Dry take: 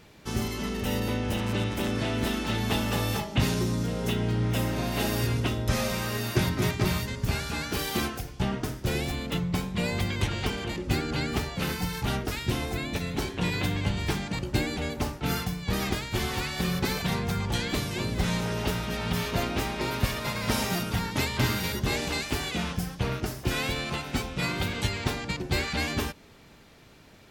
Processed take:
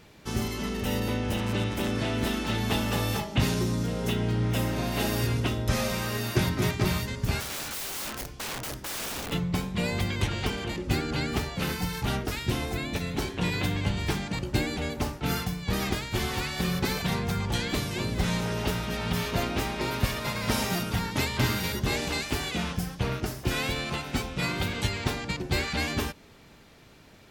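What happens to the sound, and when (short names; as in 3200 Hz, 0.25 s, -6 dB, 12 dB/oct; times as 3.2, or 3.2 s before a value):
7.4–9.32 wrapped overs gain 29.5 dB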